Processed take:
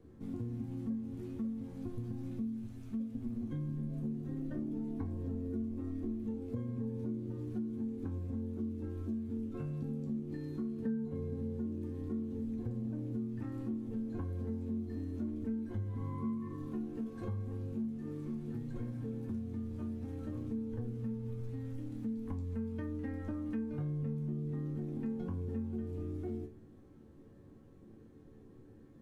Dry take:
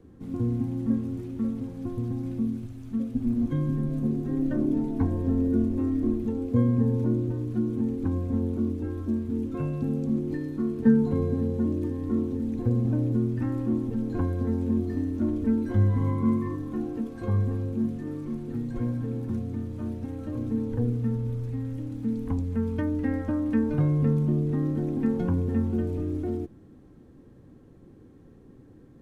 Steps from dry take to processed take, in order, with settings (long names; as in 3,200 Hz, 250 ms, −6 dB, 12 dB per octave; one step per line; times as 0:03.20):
resonators tuned to a chord D2 major, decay 0.27 s
downward compressor 4 to 1, threshold −42 dBFS, peak gain reduction 17 dB
level +5.5 dB